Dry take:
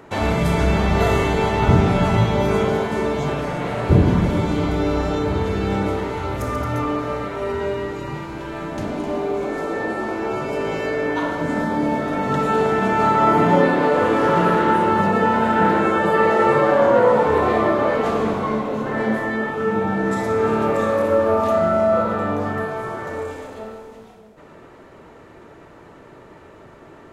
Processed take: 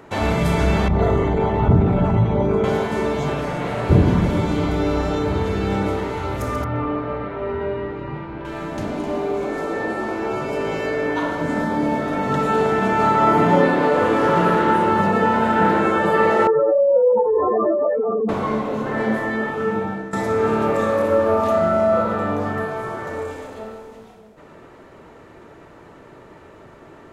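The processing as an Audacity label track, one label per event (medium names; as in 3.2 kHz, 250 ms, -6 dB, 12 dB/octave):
0.880000	2.640000	resonances exaggerated exponent 1.5
6.640000	8.450000	distance through air 370 m
16.470000	18.290000	spectral contrast enhancement exponent 3.2
19.480000	20.130000	fade out equal-power, to -16.5 dB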